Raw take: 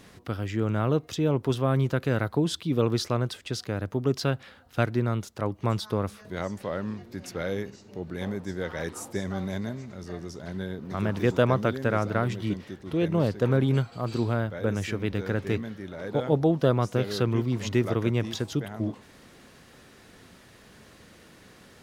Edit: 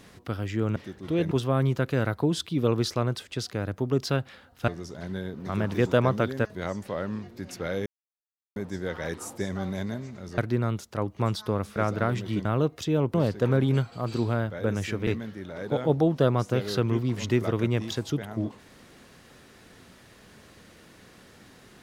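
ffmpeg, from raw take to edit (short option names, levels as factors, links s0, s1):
-filter_complex "[0:a]asplit=12[s0][s1][s2][s3][s4][s5][s6][s7][s8][s9][s10][s11];[s0]atrim=end=0.762[s12];[s1]atrim=start=12.588:end=13.142[s13];[s2]atrim=start=1.448:end=4.822[s14];[s3]atrim=start=10.128:end=11.902[s15];[s4]atrim=start=6.198:end=7.61,asetpts=PTS-STARTPTS,afade=t=out:st=1.408:d=0.004:c=hsin[s16];[s5]atrim=start=7.61:end=8.31,asetpts=PTS-STARTPTS,volume=0[s17];[s6]atrim=start=8.31:end=10.132,asetpts=PTS-STARTPTS,afade=t=in:d=0.004:c=hsin[s18];[s7]atrim=start=4.818:end=6.202[s19];[s8]atrim=start=11.898:end=12.592[s20];[s9]atrim=start=0.758:end=1.452[s21];[s10]atrim=start=13.138:end=15.072[s22];[s11]atrim=start=15.498[s23];[s12][s13]acrossfade=d=0.004:c1=hsin:c2=hsin[s24];[s24][s14]acrossfade=d=0.004:c1=hsin:c2=hsin[s25];[s25][s15]acrossfade=d=0.004:c1=hsin:c2=hsin[s26];[s16][s17][s18]concat=n=3:v=0:a=1[s27];[s26][s27]acrossfade=d=0.004:c1=hsin:c2=hsin[s28];[s28][s19]acrossfade=d=0.004:c1=hsin:c2=hsin[s29];[s29][s20]acrossfade=d=0.004:c1=hsin:c2=hsin[s30];[s30][s21]acrossfade=d=0.004:c1=hsin:c2=hsin[s31];[s31][s22]acrossfade=d=0.004:c1=hsin:c2=hsin[s32];[s32][s23]acrossfade=d=0.004:c1=hsin:c2=hsin"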